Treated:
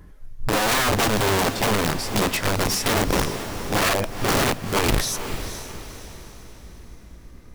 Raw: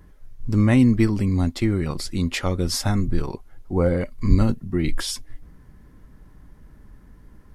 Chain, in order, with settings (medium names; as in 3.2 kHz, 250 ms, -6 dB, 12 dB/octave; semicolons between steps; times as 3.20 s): pitch bend over the whole clip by +3 st starting unshifted; integer overflow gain 19 dB; echo that smears into a reverb 468 ms, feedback 45%, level -10 dB; trim +3.5 dB